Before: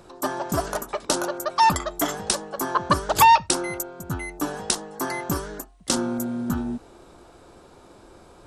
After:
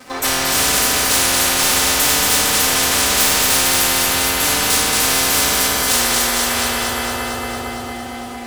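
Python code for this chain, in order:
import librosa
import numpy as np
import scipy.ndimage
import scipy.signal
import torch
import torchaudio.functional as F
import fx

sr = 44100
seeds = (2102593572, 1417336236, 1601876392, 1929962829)

y = scipy.signal.sosfilt(scipy.signal.butter(4, 67.0, 'highpass', fs=sr, output='sos'), x)
y = y + 0.95 * np.pad(y, (int(4.0 * sr / 1000.0), 0))[:len(y)]
y = fx.leveller(y, sr, passes=5)
y = fx.hpss(y, sr, part='percussive', gain_db=-13)
y = fx.comb_fb(y, sr, f0_hz=110.0, decay_s=1.8, harmonics='all', damping=0.0, mix_pct=80)
y = fx.echo_alternate(y, sr, ms=114, hz=1200.0, feedback_pct=83, wet_db=-3.0)
y = fx.rev_fdn(y, sr, rt60_s=0.63, lf_ratio=0.85, hf_ratio=0.85, size_ms=23.0, drr_db=-8.5)
y = fx.spectral_comp(y, sr, ratio=10.0)
y = F.gain(torch.from_numpy(y), -5.5).numpy()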